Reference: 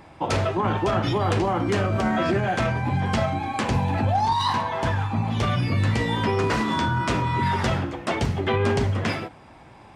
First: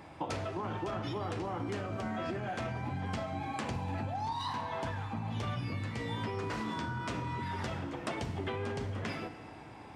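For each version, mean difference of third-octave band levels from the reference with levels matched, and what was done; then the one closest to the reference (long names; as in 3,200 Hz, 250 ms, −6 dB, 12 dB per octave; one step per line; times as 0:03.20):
2.5 dB: high-pass filter 59 Hz
downward compressor 6 to 1, threshold −31 dBFS, peak gain reduction 12.5 dB
feedback delay network reverb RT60 3.7 s, high-frequency decay 0.65×, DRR 10.5 dB
level −3.5 dB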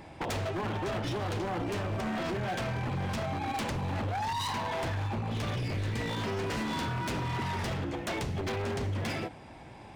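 4.5 dB: parametric band 1,200 Hz −6 dB 0.62 octaves
downward compressor 8 to 1, threshold −27 dBFS, peak gain reduction 9.5 dB
wave folding −27.5 dBFS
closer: first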